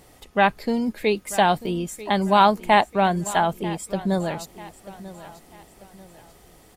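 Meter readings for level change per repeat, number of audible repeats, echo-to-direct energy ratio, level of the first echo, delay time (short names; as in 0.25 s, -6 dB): -8.0 dB, 3, -16.5 dB, -17.0 dB, 0.941 s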